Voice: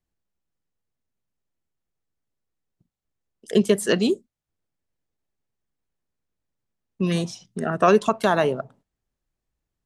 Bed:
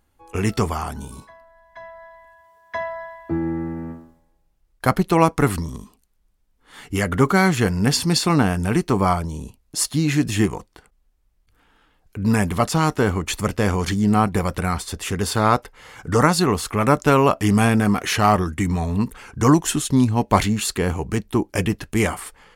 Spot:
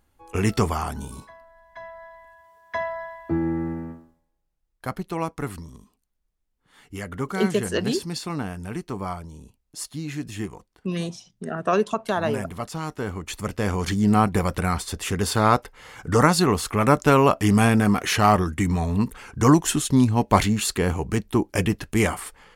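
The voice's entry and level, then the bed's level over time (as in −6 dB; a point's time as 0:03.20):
3.85 s, −4.5 dB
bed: 0:03.72 −0.5 dB
0:04.31 −12 dB
0:12.86 −12 dB
0:14.06 −1 dB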